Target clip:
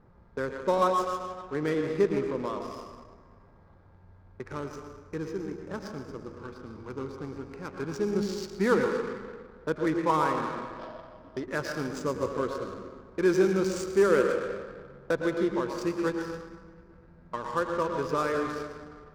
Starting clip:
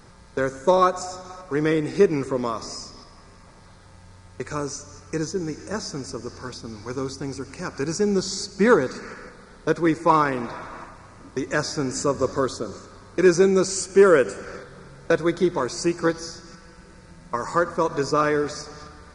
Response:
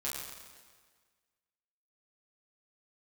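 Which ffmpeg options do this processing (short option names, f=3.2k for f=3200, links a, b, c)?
-filter_complex "[0:a]asplit=2[a][b];[1:a]atrim=start_sample=2205,adelay=110[c];[b][c]afir=irnorm=-1:irlink=0,volume=-6dB[d];[a][d]amix=inputs=2:normalize=0,adynamicsmooth=sensitivity=4.5:basefreq=1.1k,asettb=1/sr,asplit=3[e][f][g];[e]atrim=end=10.794[h];[f]atrim=start=10.79:end=11.44,asetpts=PTS-STARTPTS,afade=t=in:d=0.004:c=qsin,afade=t=out:st=0.646:d=0.004:c=qsin,equalizer=f=630:t=o:w=0.33:g=12,equalizer=f=3.15k:t=o:w=0.33:g=9,equalizer=f=5k:t=o:w=0.33:g=11[i];[g]atrim=start=11.436[j];[h][i]acrossfade=d=0.004:c1=hsin:c2=qsin[k];[k][j]acrossfade=d=0.004:c1=qsin:c2=hsin,volume=-8dB"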